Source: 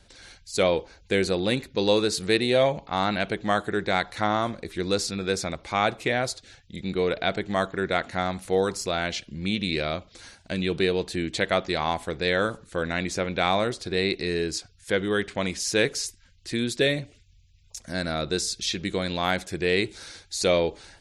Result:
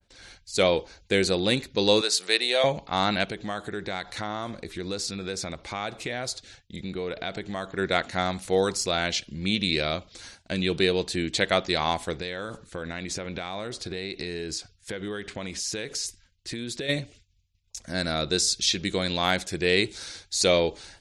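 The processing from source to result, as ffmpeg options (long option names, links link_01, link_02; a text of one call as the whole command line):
ffmpeg -i in.wav -filter_complex "[0:a]asettb=1/sr,asplit=3[link_01][link_02][link_03];[link_01]atrim=end=2.014[link_04];[link_02]atrim=start=2.01:end=2.64,asetpts=PTS-STARTPTS,afade=type=in:duration=0.004:curve=qsin,afade=type=out:start_time=0.626:duration=0.004:curve=qsin,highpass=600[link_05];[link_03]atrim=start=2.636[link_06];[link_04][link_05]acrossfade=duration=0.004:curve1=hsin:curve2=qsin[link_07];[link_07][link_06]acrossfade=duration=0.004:curve1=qsin:curve2=hsin,asplit=3[link_08][link_09][link_10];[link_08]afade=type=out:start_time=3.24:duration=0.02[link_11];[link_09]acompressor=threshold=-31dB:ratio=2.5:attack=3.2:release=140:knee=1:detection=peak,afade=type=in:start_time=3.24:duration=0.02,afade=type=out:start_time=7.77:duration=0.02[link_12];[link_10]afade=type=in:start_time=7.77:duration=0.02[link_13];[link_11][link_12][link_13]amix=inputs=3:normalize=0,asplit=3[link_14][link_15][link_16];[link_14]afade=type=out:start_time=12.17:duration=0.02[link_17];[link_15]acompressor=threshold=-29dB:ratio=12:attack=3.2:release=140:knee=1:detection=peak,afade=type=in:start_time=12.17:duration=0.02,afade=type=out:start_time=16.88:duration=0.02[link_18];[link_16]afade=type=in:start_time=16.88:duration=0.02[link_19];[link_17][link_18][link_19]amix=inputs=3:normalize=0,lowpass=9800,agate=range=-33dB:threshold=-48dB:ratio=3:detection=peak,adynamicequalizer=threshold=0.0112:dfrequency=2900:dqfactor=0.7:tfrequency=2900:tqfactor=0.7:attack=5:release=100:ratio=0.375:range=3:mode=boostabove:tftype=highshelf" out.wav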